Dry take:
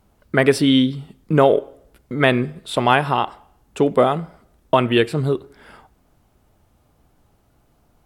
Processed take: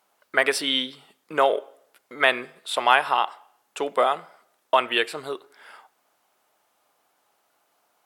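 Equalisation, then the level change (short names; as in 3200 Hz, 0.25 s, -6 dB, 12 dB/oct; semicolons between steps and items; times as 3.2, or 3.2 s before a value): HPF 750 Hz 12 dB/oct; 0.0 dB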